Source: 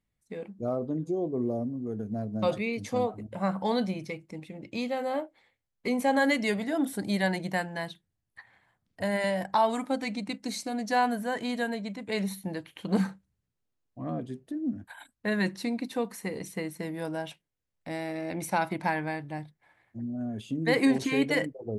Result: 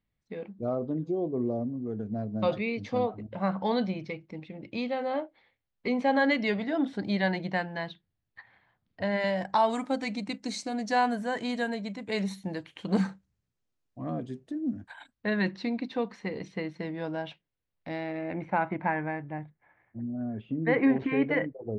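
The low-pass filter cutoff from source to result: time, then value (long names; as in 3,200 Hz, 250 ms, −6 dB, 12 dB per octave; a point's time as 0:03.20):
low-pass filter 24 dB per octave
0:09.08 4,500 Hz
0:09.63 7,900 Hz
0:14.74 7,900 Hz
0:15.35 4,400 Hz
0:17.90 4,400 Hz
0:18.44 2,300 Hz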